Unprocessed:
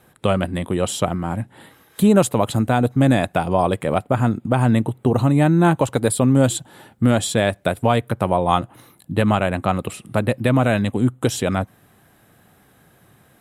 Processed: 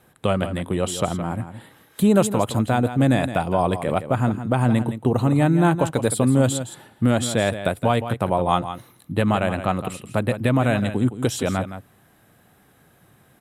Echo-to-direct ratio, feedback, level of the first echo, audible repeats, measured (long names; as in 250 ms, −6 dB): −11.0 dB, repeats not evenly spaced, −11.0 dB, 1